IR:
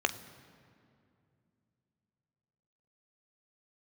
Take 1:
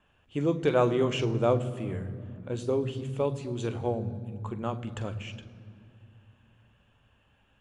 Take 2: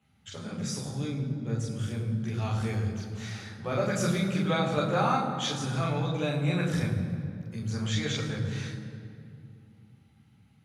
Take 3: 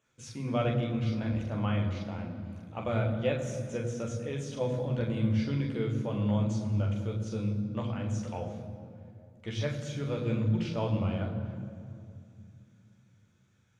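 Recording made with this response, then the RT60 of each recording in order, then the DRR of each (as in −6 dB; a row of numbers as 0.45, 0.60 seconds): 1; 2.5, 2.5, 2.5 seconds; 9.0, −5.0, −1.0 decibels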